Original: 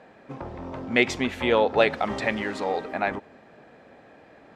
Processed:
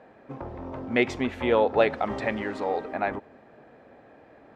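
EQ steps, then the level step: peaking EQ 180 Hz -5.5 dB 0.32 oct; treble shelf 2.4 kHz -10.5 dB; 0.0 dB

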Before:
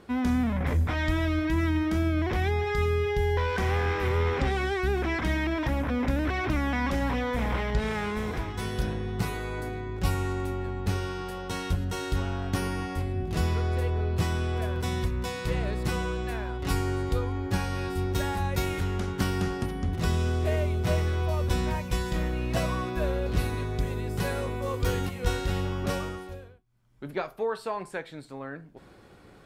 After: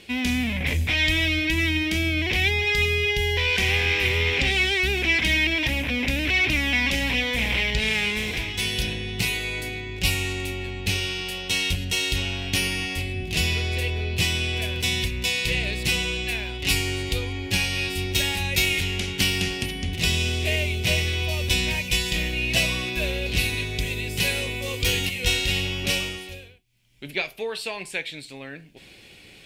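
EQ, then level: resonant high shelf 1.8 kHz +12 dB, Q 3; 0.0 dB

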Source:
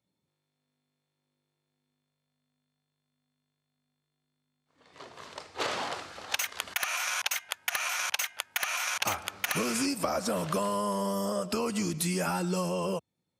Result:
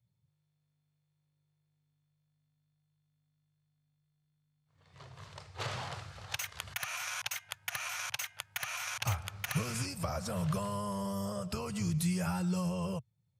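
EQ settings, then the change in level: resonant low shelf 180 Hz +14 dB, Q 3; -7.0 dB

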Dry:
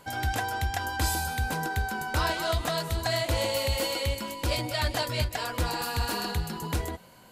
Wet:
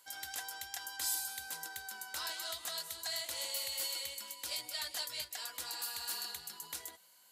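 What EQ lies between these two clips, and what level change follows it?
differentiator; peaking EQ 2.5 kHz -4 dB 0.33 oct; treble shelf 9 kHz -7 dB; 0.0 dB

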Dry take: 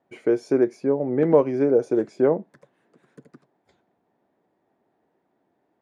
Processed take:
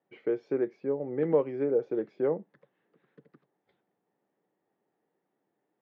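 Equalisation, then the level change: cabinet simulation 170–3300 Hz, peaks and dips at 250 Hz -8 dB, 360 Hz -4 dB, 660 Hz -9 dB, 990 Hz -6 dB, 1.5 kHz -5 dB, 2.4 kHz -4 dB; -4.5 dB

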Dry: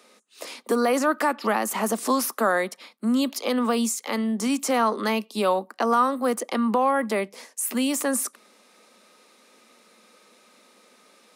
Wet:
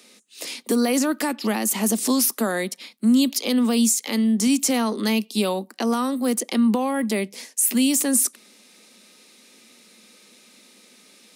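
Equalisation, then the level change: dynamic bell 1.7 kHz, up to -4 dB, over -37 dBFS, Q 0.81; peaking EQ 570 Hz -8.5 dB 1.4 oct; peaking EQ 1.2 kHz -11 dB 1.1 oct; +8.0 dB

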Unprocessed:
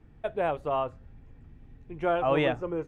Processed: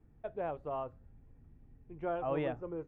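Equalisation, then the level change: low-pass 1.1 kHz 6 dB/octave; -8.0 dB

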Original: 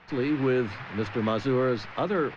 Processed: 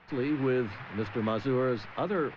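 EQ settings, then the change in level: distance through air 89 m; -3.0 dB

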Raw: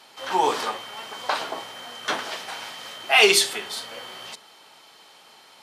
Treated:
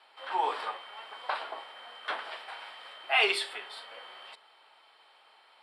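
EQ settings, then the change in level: boxcar filter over 7 samples; high-pass 600 Hz 12 dB/octave; -6.0 dB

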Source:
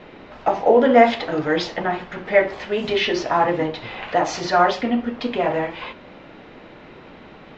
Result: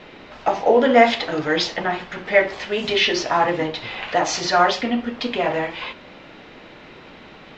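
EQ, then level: treble shelf 2.2 kHz +9.5 dB; -1.5 dB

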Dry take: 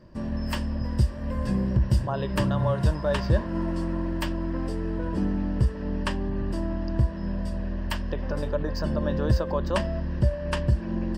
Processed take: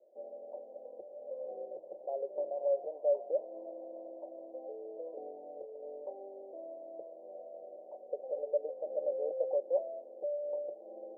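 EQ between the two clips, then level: elliptic high-pass 440 Hz, stop band 60 dB; rippled Chebyshev low-pass 780 Hz, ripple 6 dB; 0.0 dB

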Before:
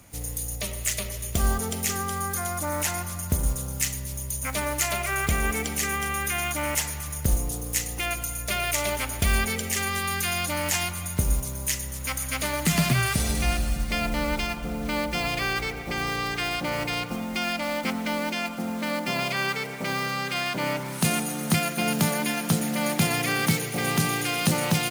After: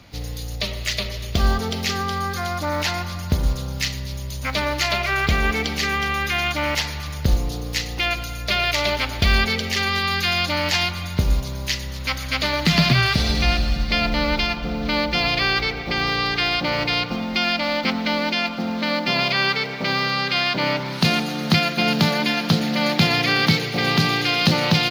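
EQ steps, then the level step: resonant high shelf 6.2 kHz -13 dB, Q 3; +5.0 dB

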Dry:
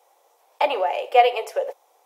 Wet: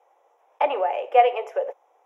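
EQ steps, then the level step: boxcar filter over 10 samples; bass shelf 250 Hz -4 dB; 0.0 dB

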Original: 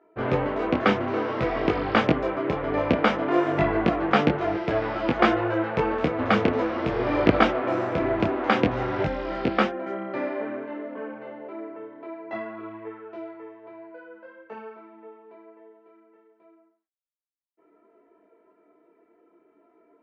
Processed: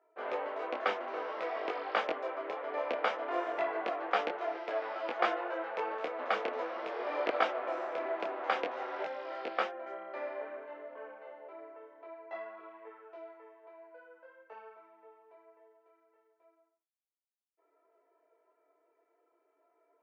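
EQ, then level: ladder high-pass 430 Hz, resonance 25%; -4.0 dB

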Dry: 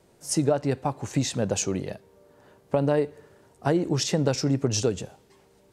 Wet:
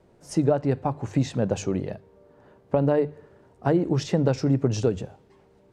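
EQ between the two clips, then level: low-pass 1.6 kHz 6 dB/octave; bass shelf 120 Hz +4 dB; hum notches 50/100/150 Hz; +1.5 dB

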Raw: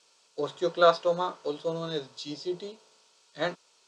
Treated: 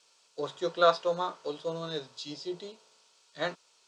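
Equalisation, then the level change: peaking EQ 270 Hz -3.5 dB 2.4 oct; -1.0 dB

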